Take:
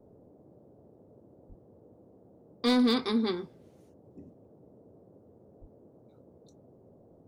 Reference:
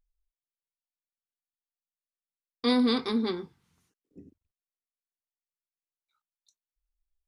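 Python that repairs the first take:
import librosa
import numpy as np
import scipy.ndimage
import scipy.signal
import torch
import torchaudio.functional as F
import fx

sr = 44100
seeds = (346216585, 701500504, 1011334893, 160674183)

y = fx.fix_declip(x, sr, threshold_db=-18.5)
y = fx.highpass(y, sr, hz=140.0, slope=24, at=(1.48, 1.6), fade=0.02)
y = fx.highpass(y, sr, hz=140.0, slope=24, at=(5.6, 5.72), fade=0.02)
y = fx.noise_reduce(y, sr, print_start_s=6.75, print_end_s=7.25, reduce_db=30.0)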